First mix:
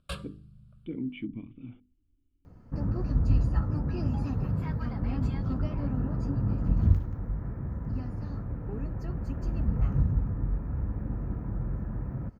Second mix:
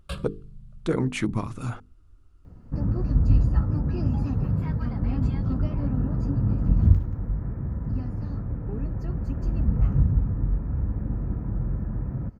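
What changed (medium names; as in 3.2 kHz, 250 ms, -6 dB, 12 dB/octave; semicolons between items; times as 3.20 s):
speech: remove cascade formant filter i; master: add bass shelf 420 Hz +5 dB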